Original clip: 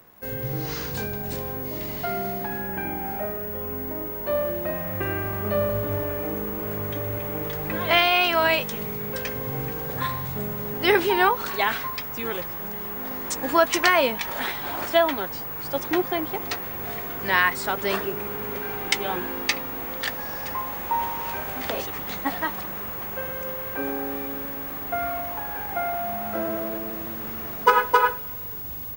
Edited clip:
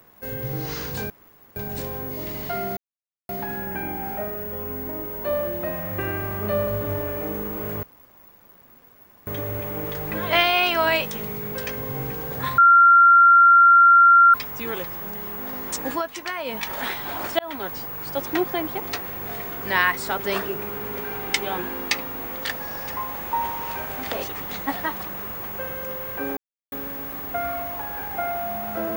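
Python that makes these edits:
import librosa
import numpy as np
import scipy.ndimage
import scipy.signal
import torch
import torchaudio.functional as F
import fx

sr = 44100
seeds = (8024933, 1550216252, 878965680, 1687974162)

y = fx.edit(x, sr, fx.insert_room_tone(at_s=1.1, length_s=0.46),
    fx.insert_silence(at_s=2.31, length_s=0.52),
    fx.insert_room_tone(at_s=6.85, length_s=1.44),
    fx.bleep(start_s=10.16, length_s=1.76, hz=1380.0, db=-9.0),
    fx.fade_down_up(start_s=13.48, length_s=0.68, db=-11.5, fade_s=0.13),
    fx.fade_in_span(start_s=14.97, length_s=0.29),
    fx.silence(start_s=23.95, length_s=0.35), tone=tone)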